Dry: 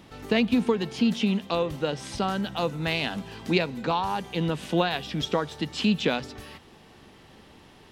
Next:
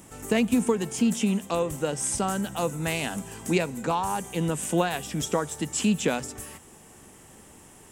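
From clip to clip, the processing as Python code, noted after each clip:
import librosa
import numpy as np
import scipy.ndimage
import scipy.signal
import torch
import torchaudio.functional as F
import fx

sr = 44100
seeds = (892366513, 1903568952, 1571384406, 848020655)

y = fx.high_shelf_res(x, sr, hz=5800.0, db=12.0, q=3.0)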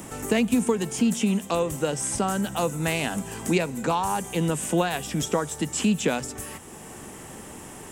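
y = fx.band_squash(x, sr, depth_pct=40)
y = y * 10.0 ** (1.5 / 20.0)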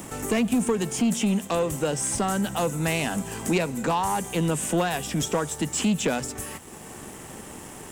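y = fx.leveller(x, sr, passes=2)
y = y * 10.0 ** (-6.0 / 20.0)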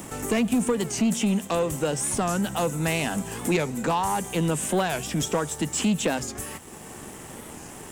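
y = fx.record_warp(x, sr, rpm=45.0, depth_cents=160.0)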